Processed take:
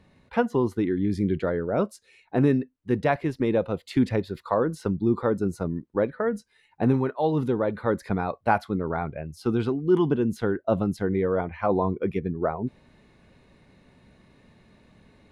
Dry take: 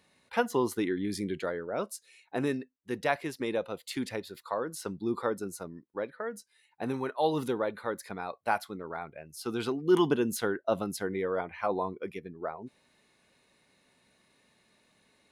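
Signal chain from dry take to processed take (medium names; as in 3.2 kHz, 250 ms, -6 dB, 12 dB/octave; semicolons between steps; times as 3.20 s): RIAA curve playback; gain riding within 5 dB 0.5 s; trim +3 dB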